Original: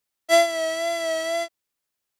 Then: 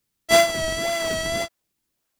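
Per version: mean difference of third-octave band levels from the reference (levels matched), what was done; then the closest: 8.5 dB: tilt shelf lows -4.5 dB, about 1.1 kHz; in parallel at -8 dB: decimation with a swept rate 41×, swing 160% 1.8 Hz; on the sum: peaking EQ 220 Hz +2.5 dB 0.77 oct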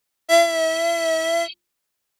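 1.5 dB: spectral replace 0.69–1.50 s, 2.1–5 kHz before; hum notches 50/100/150/200/250/300/350 Hz; in parallel at -2.5 dB: peak limiter -19.5 dBFS, peak gain reduction 11 dB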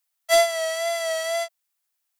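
3.5 dB: elliptic high-pass 650 Hz, stop band 50 dB; treble shelf 7.1 kHz +7.5 dB; wavefolder -10.5 dBFS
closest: second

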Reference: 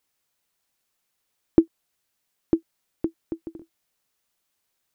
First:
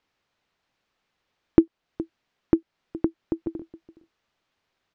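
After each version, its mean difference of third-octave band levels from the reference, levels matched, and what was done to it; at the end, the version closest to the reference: 2.0 dB: delay 418 ms -20.5 dB; in parallel at +2 dB: compression, threshold -31 dBFS, peak gain reduction 19 dB; on the sum: distance through air 200 m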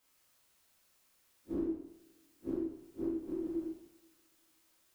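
7.5 dB: spectral blur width 90 ms; compression 6:1, threshold -40 dBFS, peak gain reduction 17 dB; two-slope reverb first 0.84 s, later 2.6 s, from -26 dB, DRR -7.5 dB; trim -1 dB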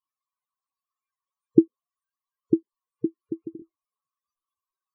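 3.0 dB: spectral noise reduction 8 dB; peaking EQ 1.1 kHz +10 dB 0.25 oct; loudest bins only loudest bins 16; trim +1.5 dB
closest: first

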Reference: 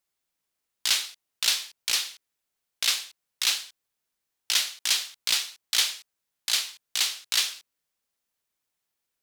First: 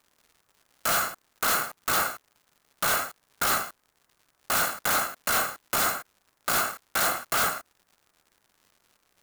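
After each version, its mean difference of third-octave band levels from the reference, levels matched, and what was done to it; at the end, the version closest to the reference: 13.0 dB: bit-reversed sample order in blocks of 128 samples; resonant high shelf 2.1 kHz -11.5 dB, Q 1.5; in parallel at -9.5 dB: sine folder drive 20 dB, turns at -12.5 dBFS; on the sum: crackle 160 per s -47 dBFS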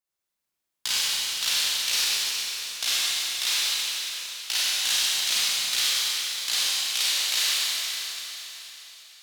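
8.0 dB: gate -39 dBFS, range -9 dB; compression, threshold -26 dBFS, peak gain reduction 8.5 dB; hard clipper -18 dBFS, distortion -21 dB; Schroeder reverb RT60 3.8 s, combs from 31 ms, DRR -8.5 dB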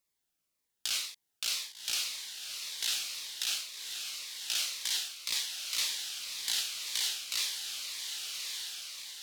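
5.0 dB: compression, threshold -24 dBFS, peak gain reduction 7 dB; peak limiter -19 dBFS, peak gain reduction 7.5 dB; on a send: echo that smears into a reverb 1166 ms, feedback 51%, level -4 dB; on the sum: Shepard-style phaser falling 1.9 Hz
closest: third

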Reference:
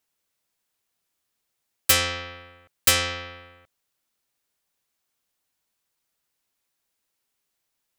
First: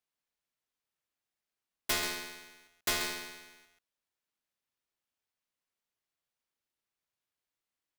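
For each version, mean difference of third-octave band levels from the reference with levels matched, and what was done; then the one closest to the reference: 10.0 dB: treble shelf 3.8 kHz -10.5 dB; echo from a far wall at 23 m, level -7 dB; polarity switched at an audio rate 2 kHz; trim -7.5 dB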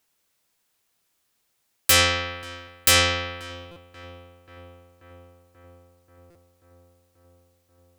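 4.5 dB: peak limiter -13 dBFS, peak gain reduction 8 dB; filtered feedback delay 535 ms, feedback 78%, low-pass 2 kHz, level -18 dB; buffer glitch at 3.71/6.30 s, samples 256, times 8; trim +6.5 dB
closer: second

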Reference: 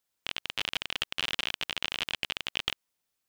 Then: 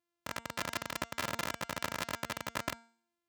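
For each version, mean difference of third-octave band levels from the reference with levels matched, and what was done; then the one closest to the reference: 7.5 dB: sorted samples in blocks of 128 samples; high-pass 56 Hz 24 dB/octave; de-hum 230.9 Hz, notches 36; dynamic bell 1.4 kHz, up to +5 dB, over -48 dBFS, Q 0.9; trim -6 dB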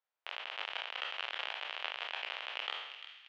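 12.0 dB: spectral sustain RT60 0.86 s; high-pass 590 Hz 24 dB/octave; tape spacing loss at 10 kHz 38 dB; feedback echo behind a high-pass 346 ms, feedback 43%, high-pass 1.8 kHz, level -10 dB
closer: first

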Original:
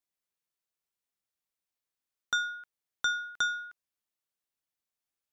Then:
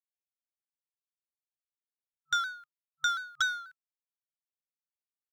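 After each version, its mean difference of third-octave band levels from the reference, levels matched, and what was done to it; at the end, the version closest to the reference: 5.0 dB: companding laws mixed up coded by A; FFT band-reject 150–1300 Hz; vibrato with a chosen wave saw down 4.1 Hz, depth 100 cents; trim +1.5 dB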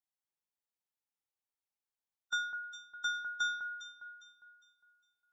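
2.5 dB: harmonic-percussive split percussive -11 dB; peaking EQ 840 Hz +8.5 dB 0.3 oct; echo whose repeats swap between lows and highs 203 ms, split 1.9 kHz, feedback 57%, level -5 dB; trim -5 dB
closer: second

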